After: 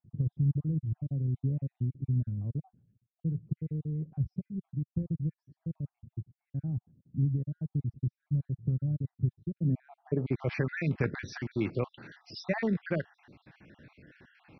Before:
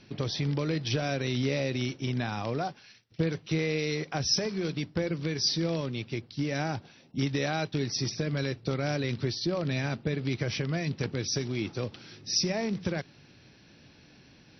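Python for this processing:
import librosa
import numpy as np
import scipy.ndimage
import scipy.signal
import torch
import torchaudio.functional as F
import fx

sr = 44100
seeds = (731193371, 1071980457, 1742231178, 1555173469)

y = fx.spec_dropout(x, sr, seeds[0], share_pct=49)
y = fx.filter_sweep_lowpass(y, sr, from_hz=140.0, to_hz=1800.0, start_s=9.49, end_s=10.57, q=1.3)
y = fx.wow_flutter(y, sr, seeds[1], rate_hz=2.1, depth_cents=22.0)
y = F.gain(torch.from_numpy(y), 2.5).numpy()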